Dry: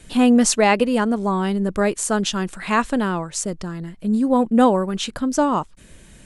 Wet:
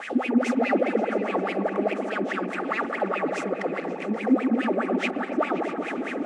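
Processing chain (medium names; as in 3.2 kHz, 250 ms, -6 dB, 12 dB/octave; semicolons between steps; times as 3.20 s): spectral levelling over time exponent 0.4; saturation -14.5 dBFS, distortion -9 dB; wah-wah 4.8 Hz 250–2500 Hz, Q 11; Butterworth band-stop 1 kHz, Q 5; delay with an opening low-pass 132 ms, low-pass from 750 Hz, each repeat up 1 oct, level -6 dB; trim +7.5 dB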